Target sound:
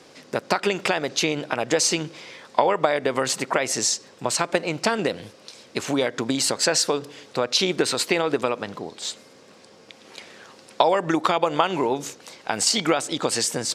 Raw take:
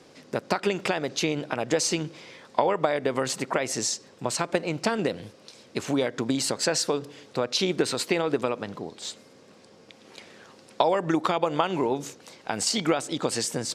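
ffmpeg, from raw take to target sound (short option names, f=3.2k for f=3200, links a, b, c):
-af "lowshelf=f=440:g=-6,volume=5.5dB"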